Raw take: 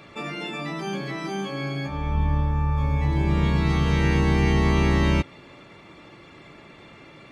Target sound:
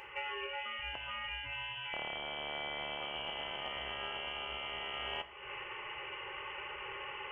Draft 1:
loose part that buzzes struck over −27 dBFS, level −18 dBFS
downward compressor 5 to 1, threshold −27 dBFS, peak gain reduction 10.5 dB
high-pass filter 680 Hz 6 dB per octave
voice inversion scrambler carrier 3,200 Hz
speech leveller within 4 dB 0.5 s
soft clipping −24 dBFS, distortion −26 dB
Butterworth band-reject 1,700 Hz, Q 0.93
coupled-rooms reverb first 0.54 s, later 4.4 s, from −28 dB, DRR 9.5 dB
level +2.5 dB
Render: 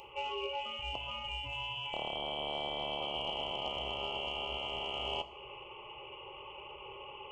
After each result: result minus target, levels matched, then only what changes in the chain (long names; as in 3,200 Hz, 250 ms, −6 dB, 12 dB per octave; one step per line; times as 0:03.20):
downward compressor: peak gain reduction −5.5 dB; 2,000 Hz band −5.5 dB
change: downward compressor 5 to 1, threshold −34 dBFS, peak gain reduction 16 dB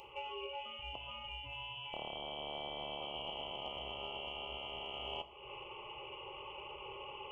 2,000 Hz band −5.0 dB
remove: Butterworth band-reject 1,700 Hz, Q 0.93